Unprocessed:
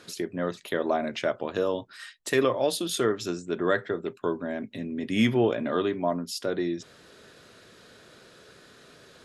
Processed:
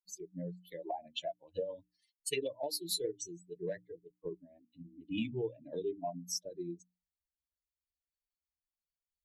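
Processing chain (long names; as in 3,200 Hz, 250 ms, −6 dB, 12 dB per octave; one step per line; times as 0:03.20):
spectral dynamics exaggerated over time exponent 3
downward compressor 12 to 1, threshold −32 dBFS, peak gain reduction 12.5 dB
formants moved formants +2 semitones
Butterworth band-reject 1,300 Hz, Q 0.73
mains-hum notches 60/120/180/240/300 Hz
level +3 dB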